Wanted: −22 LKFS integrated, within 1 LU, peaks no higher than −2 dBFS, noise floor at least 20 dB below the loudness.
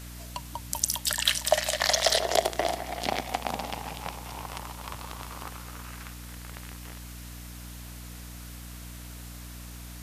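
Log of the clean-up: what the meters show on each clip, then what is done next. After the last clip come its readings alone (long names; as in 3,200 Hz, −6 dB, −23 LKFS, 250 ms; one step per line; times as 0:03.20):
mains hum 60 Hz; hum harmonics up to 300 Hz; level of the hum −41 dBFS; background noise floor −42 dBFS; target noise floor −49 dBFS; integrated loudness −28.5 LKFS; sample peak −7.0 dBFS; target loudness −22.0 LKFS
→ mains-hum notches 60/120/180/240/300 Hz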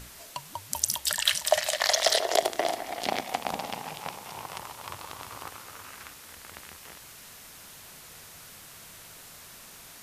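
mains hum none found; background noise floor −48 dBFS; target noise floor −49 dBFS
→ broadband denoise 6 dB, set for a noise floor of −48 dBFS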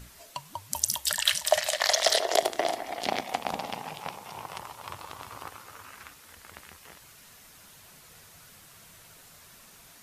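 background noise floor −53 dBFS; integrated loudness −28.0 LKFS; sample peak −7.0 dBFS; target loudness −22.0 LKFS
→ level +6 dB
brickwall limiter −2 dBFS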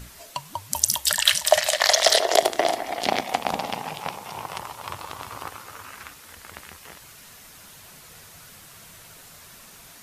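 integrated loudness −22.0 LKFS; sample peak −2.0 dBFS; background noise floor −47 dBFS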